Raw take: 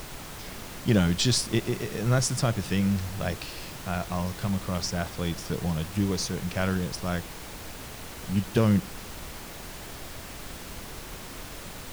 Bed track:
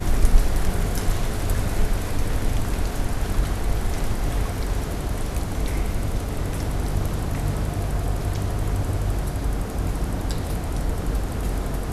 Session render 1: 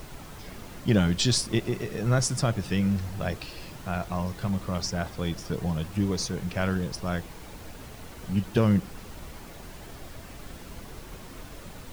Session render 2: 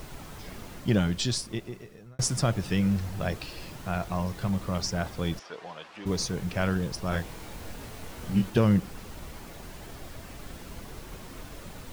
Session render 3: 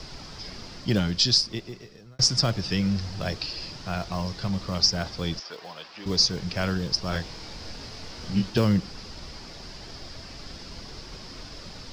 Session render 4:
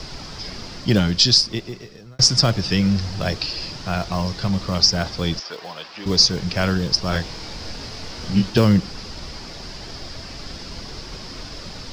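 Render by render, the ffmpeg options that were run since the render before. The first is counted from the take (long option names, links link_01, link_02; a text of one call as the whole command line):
ffmpeg -i in.wav -af "afftdn=noise_reduction=7:noise_floor=-41" out.wav
ffmpeg -i in.wav -filter_complex "[0:a]asplit=3[link_01][link_02][link_03];[link_01]afade=type=out:start_time=5.38:duration=0.02[link_04];[link_02]highpass=670,lowpass=3900,afade=type=in:start_time=5.38:duration=0.02,afade=type=out:start_time=6.05:duration=0.02[link_05];[link_03]afade=type=in:start_time=6.05:duration=0.02[link_06];[link_04][link_05][link_06]amix=inputs=3:normalize=0,asettb=1/sr,asplit=3[link_07][link_08][link_09];[link_07]atrim=end=7.094[link_10];[link_08]atrim=start=7.09:end=8.5,asetpts=PTS-STARTPTS,afade=type=in:duration=0.004:curve=qsin,afade=type=out:start_time=1.406:duration=0.004:curve=qsin,asplit=2[link_11][link_12];[link_12]adelay=25,volume=-3dB[link_13];[link_11][link_13]amix=inputs=2:normalize=0,atrim=end_sample=62181[link_14];[link_09]atrim=start=8.496[link_15];[link_10][link_14]acrossfade=duration=0.004:curve1=hsin:curve2=qsin[link_16];[link_16][link_15]acrossfade=duration=0.004:curve1=qsin:curve2=hsin,asplit=2[link_17][link_18];[link_17]atrim=end=2.19,asetpts=PTS-STARTPTS,afade=type=out:start_time=0.62:duration=1.57[link_19];[link_18]atrim=start=2.19,asetpts=PTS-STARTPTS,afade=type=in:duration=0.004:curve=hsin[link_20];[link_19][link_20]concat=n=2:v=0:a=1" out.wav
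ffmpeg -i in.wav -filter_complex "[0:a]lowpass=frequency=5000:width_type=q:width=6.5,acrossover=split=400|550|3600[link_01][link_02][link_03][link_04];[link_02]acrusher=samples=12:mix=1:aa=0.000001[link_05];[link_01][link_05][link_03][link_04]amix=inputs=4:normalize=0" out.wav
ffmpeg -i in.wav -af "volume=6.5dB,alimiter=limit=-2dB:level=0:latency=1" out.wav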